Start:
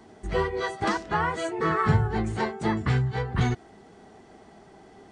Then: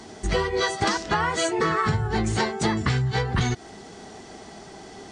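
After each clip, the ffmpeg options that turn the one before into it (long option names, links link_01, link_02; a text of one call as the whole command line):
ffmpeg -i in.wav -af "equalizer=frequency=5700:width_type=o:width=1.8:gain=11,acompressor=threshold=-27dB:ratio=10,volume=7.5dB" out.wav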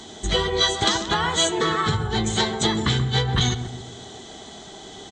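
ffmpeg -i in.wav -filter_complex "[0:a]superequalizer=13b=3.98:15b=2.24:16b=0.562,asplit=2[link_01][link_02];[link_02]adelay=133,lowpass=frequency=860:poles=1,volume=-7dB,asplit=2[link_03][link_04];[link_04]adelay=133,lowpass=frequency=860:poles=1,volume=0.51,asplit=2[link_05][link_06];[link_06]adelay=133,lowpass=frequency=860:poles=1,volume=0.51,asplit=2[link_07][link_08];[link_08]adelay=133,lowpass=frequency=860:poles=1,volume=0.51,asplit=2[link_09][link_10];[link_10]adelay=133,lowpass=frequency=860:poles=1,volume=0.51,asplit=2[link_11][link_12];[link_12]adelay=133,lowpass=frequency=860:poles=1,volume=0.51[link_13];[link_01][link_03][link_05][link_07][link_09][link_11][link_13]amix=inputs=7:normalize=0" out.wav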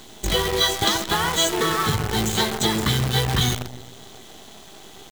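ffmpeg -i in.wav -af "acrusher=bits=5:dc=4:mix=0:aa=0.000001" out.wav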